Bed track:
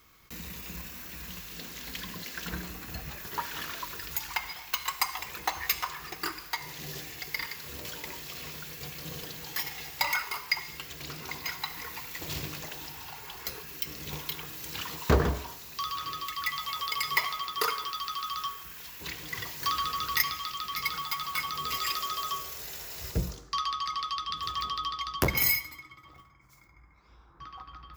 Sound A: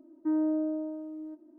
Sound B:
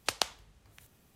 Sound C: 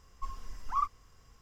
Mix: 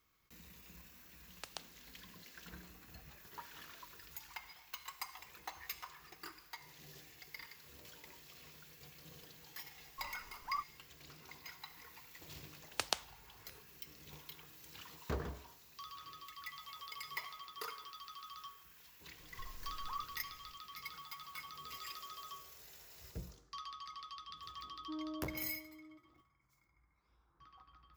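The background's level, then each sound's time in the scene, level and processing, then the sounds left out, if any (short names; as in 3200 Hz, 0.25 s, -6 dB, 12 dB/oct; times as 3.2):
bed track -16.5 dB
1.35 add B -17.5 dB
9.76 add C -6.5 dB + notch comb 1300 Hz
12.71 add B -5.5 dB
19.17 add C -5.5 dB + compressor 2:1, threshold -40 dBFS
24.63 add A -16.5 dB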